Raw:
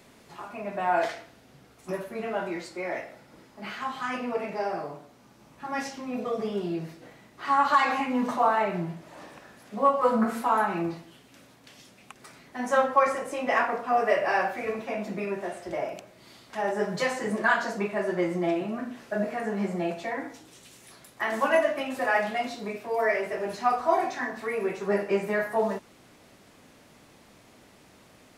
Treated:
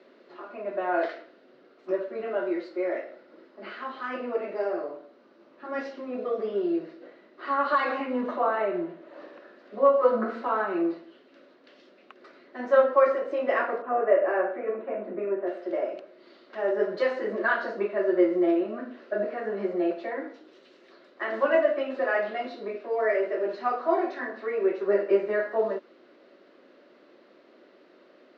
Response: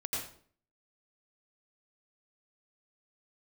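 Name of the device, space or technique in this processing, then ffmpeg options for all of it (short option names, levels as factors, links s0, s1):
phone earpiece: -filter_complex "[0:a]highpass=340,equalizer=f=360:t=q:w=4:g=10,equalizer=f=560:t=q:w=4:g=9,equalizer=f=840:t=q:w=4:g=-7,equalizer=f=1400:t=q:w=4:g=3,equalizer=f=2400:t=q:w=4:g=-6,equalizer=f=3400:t=q:w=4:g=-8,lowpass=f=3600:w=0.5412,lowpass=f=3600:w=1.3066,equalizer=f=125:t=o:w=1:g=-7,equalizer=f=250:t=o:w=1:g=6,equalizer=f=4000:t=o:w=1:g=6,asettb=1/sr,asplit=3[s0][s1][s2];[s0]atrim=end=8.214[s3];[s1]atrim=start=8.21:end=9.14,asetpts=PTS-STARTPTS,afade=t=in:d=0.004:c=qsin,afade=t=out:st=0.926:d=0.004:c=qsin,equalizer=f=5000:t=o:w=0.51:g=-6[s4];[s2]atrim=start=9.136[s5];[s3][s4]acrossfade=d=0.004:c1=hsin:c2=qsin[s6];[s6][s5]acrossfade=d=0.004:c1=qsin:c2=hsin,asettb=1/sr,asplit=3[s7][s8][s9];[s7]atrim=end=13.824[s10];[s8]atrim=start=13.82:end=15.47,asetpts=PTS-STARTPTS,afade=t=in:d=0.004:c=qsin,afade=t=out:st=1.646:d=0.004:c=qsin,lowpass=1700[s11];[s9]atrim=start=15.466[s12];[s10][s11]acrossfade=d=0.004:c1=hsin:c2=qsin[s13];[s13][s12]acrossfade=d=0.004:c1=qsin:c2=hsin,volume=0.708"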